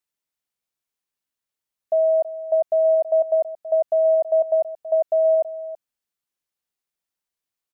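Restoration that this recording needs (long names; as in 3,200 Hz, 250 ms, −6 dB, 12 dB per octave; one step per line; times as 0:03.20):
echo removal 327 ms −14 dB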